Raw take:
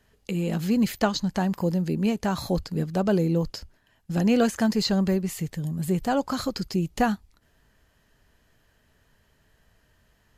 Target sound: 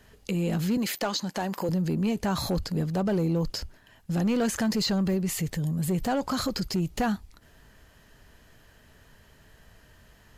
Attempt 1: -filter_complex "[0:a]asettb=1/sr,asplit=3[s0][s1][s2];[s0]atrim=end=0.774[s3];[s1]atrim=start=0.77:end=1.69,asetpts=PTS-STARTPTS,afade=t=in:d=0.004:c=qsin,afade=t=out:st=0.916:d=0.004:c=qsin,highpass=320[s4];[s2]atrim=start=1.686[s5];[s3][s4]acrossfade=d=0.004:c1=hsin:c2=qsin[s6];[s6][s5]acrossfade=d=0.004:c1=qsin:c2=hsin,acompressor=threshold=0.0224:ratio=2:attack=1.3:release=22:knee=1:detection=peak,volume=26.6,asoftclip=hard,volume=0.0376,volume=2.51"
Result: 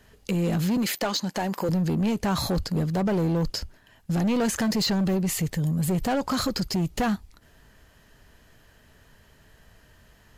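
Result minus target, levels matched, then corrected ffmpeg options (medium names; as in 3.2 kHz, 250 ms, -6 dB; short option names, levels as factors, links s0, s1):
compression: peak gain reduction -3 dB
-filter_complex "[0:a]asettb=1/sr,asplit=3[s0][s1][s2];[s0]atrim=end=0.774[s3];[s1]atrim=start=0.77:end=1.69,asetpts=PTS-STARTPTS,afade=t=in:d=0.004:c=qsin,afade=t=out:st=0.916:d=0.004:c=qsin,highpass=320[s4];[s2]atrim=start=1.686[s5];[s3][s4]acrossfade=d=0.004:c1=hsin:c2=qsin[s6];[s6][s5]acrossfade=d=0.004:c1=qsin:c2=hsin,acompressor=threshold=0.0106:ratio=2:attack=1.3:release=22:knee=1:detection=peak,volume=26.6,asoftclip=hard,volume=0.0376,volume=2.51"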